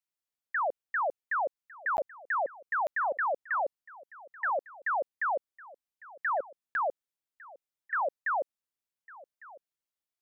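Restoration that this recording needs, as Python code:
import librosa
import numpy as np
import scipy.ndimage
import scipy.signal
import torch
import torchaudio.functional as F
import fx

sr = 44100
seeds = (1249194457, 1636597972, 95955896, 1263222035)

y = fx.fix_interpolate(x, sr, at_s=(1.97, 2.87, 6.74), length_ms=11.0)
y = fx.fix_echo_inverse(y, sr, delay_ms=1153, level_db=-20.5)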